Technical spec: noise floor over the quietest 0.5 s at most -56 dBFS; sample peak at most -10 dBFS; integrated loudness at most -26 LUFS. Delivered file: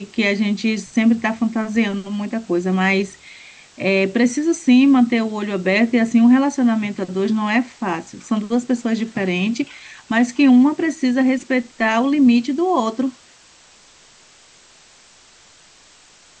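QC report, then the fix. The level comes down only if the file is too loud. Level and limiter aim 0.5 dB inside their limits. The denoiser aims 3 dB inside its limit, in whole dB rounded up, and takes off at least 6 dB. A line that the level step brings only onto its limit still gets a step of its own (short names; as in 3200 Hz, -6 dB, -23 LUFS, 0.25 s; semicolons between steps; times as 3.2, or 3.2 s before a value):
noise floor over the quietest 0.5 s -49 dBFS: fail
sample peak -5.5 dBFS: fail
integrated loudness -18.0 LUFS: fail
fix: gain -8.5 dB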